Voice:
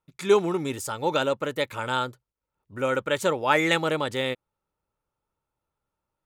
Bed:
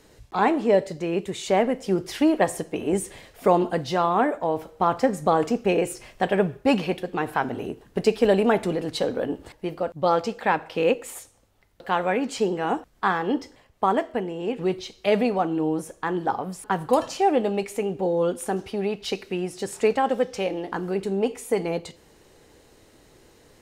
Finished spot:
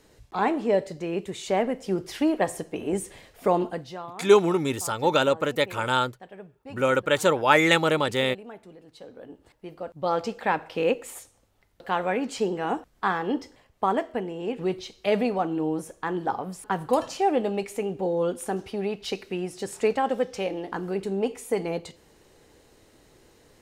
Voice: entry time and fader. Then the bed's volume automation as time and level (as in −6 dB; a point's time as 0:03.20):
4.00 s, +3.0 dB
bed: 0:03.63 −3.5 dB
0:04.25 −22.5 dB
0:08.86 −22.5 dB
0:10.25 −2.5 dB